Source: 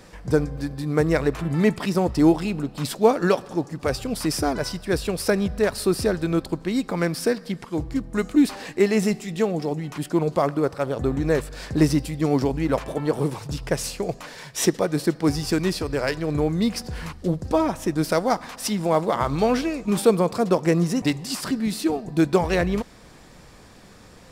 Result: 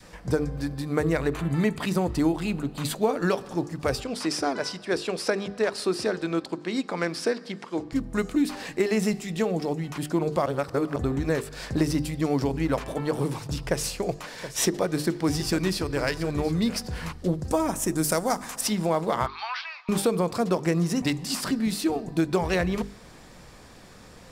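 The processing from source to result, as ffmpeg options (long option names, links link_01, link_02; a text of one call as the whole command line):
ffmpeg -i in.wav -filter_complex "[0:a]asettb=1/sr,asplit=3[link_01][link_02][link_03];[link_01]atrim=end=0.894[link_04];[link_02]atrim=start=0.89:end=3.24,asetpts=PTS-STARTPTS,afade=type=in:duration=0.004:curve=qsin,afade=type=out:start_time=2.346:duration=0.004:curve=qsin,bandreject=frequency=5300:width=6.5[link_05];[link_03]atrim=start=3.236[link_06];[link_04][link_05]acrossfade=duration=0.004:curve1=hsin:curve2=qsin[link_07];[link_07][link_06]acrossfade=duration=0.004:curve1=qsin:curve2=hsin,asettb=1/sr,asplit=3[link_08][link_09][link_10];[link_08]atrim=end=4.004[link_11];[link_09]atrim=start=4:end=7.93,asetpts=PTS-STARTPTS,afade=type=in:duration=0.004:curve=qsin,afade=type=out:start_time=3.926:duration=0.004:curve=qsin,highpass=260,lowpass=7000[link_12];[link_10]atrim=start=7.926[link_13];[link_11][link_12]acrossfade=duration=0.004:curve1=hsin:curve2=qsin[link_14];[link_14][link_13]acrossfade=duration=0.004:curve1=qsin:curve2=hsin,asettb=1/sr,asplit=3[link_15][link_16][link_17];[link_15]atrim=end=13.694[link_18];[link_16]atrim=start=13.69:end=16.77,asetpts=PTS-STARTPTS,afade=type=in:duration=0.004:curve=qsin,afade=type=out:start_time=3.076:duration=0.004:curve=qsin,aecho=1:1:724:0.2,atrim=end_sample=135828[link_19];[link_17]atrim=start=16.766[link_20];[link_18][link_19]acrossfade=duration=0.004:curve1=hsin:curve2=qsin[link_21];[link_21][link_20]acrossfade=duration=0.004:curve1=qsin:curve2=hsin,asettb=1/sr,asplit=3[link_22][link_23][link_24];[link_22]atrim=end=17.484[link_25];[link_23]atrim=start=17.48:end=18.61,asetpts=PTS-STARTPTS,afade=type=in:duration=0.004:curve=qsin,afade=type=out:start_time=1.126:duration=0.004:curve=qsin,highshelf=frequency=5700:width_type=q:width=1.5:gain=9[link_26];[link_24]atrim=start=18.606[link_27];[link_25][link_26]acrossfade=duration=0.004:curve1=hsin:curve2=qsin[link_28];[link_28][link_27]acrossfade=duration=0.004:curve1=qsin:curve2=hsin,asettb=1/sr,asplit=3[link_29][link_30][link_31];[link_29]atrim=end=19.264[link_32];[link_30]atrim=start=19.26:end=19.89,asetpts=PTS-STARTPTS,afade=type=in:duration=0.004:curve=qsin,afade=type=out:start_time=0.626:duration=0.004:curve=qsin,asuperpass=centerf=2100:order=12:qfactor=0.53[link_33];[link_31]atrim=start=19.886[link_34];[link_32][link_33]acrossfade=duration=0.004:curve1=hsin:curve2=qsin[link_35];[link_35][link_34]acrossfade=duration=0.004:curve1=qsin:curve2=hsin,asplit=3[link_36][link_37][link_38];[link_36]atrim=end=10.462[link_39];[link_37]atrim=start=10.458:end=10.962,asetpts=PTS-STARTPTS,areverse[link_40];[link_38]atrim=start=10.958[link_41];[link_39][link_40]acrossfade=duration=0.004:curve1=hsin:curve2=hsin[link_42];[link_42][link_41]acrossfade=duration=0.004:curve1=hsin:curve2=hsin,bandreject=frequency=50:width_type=h:width=6,bandreject=frequency=100:width_type=h:width=6,bandreject=frequency=150:width_type=h:width=6,bandreject=frequency=200:width_type=h:width=6,bandreject=frequency=250:width_type=h:width=6,bandreject=frequency=300:width_type=h:width=6,bandreject=frequency=350:width_type=h:width=6,bandreject=frequency=400:width_type=h:width=6,bandreject=frequency=450:width_type=h:width=6,adynamicequalizer=threshold=0.02:dfrequency=510:dqfactor=0.85:tfrequency=510:tqfactor=0.85:attack=5:release=100:ratio=0.375:range=1.5:mode=cutabove:tftype=bell,acompressor=threshold=-19dB:ratio=6" out.wav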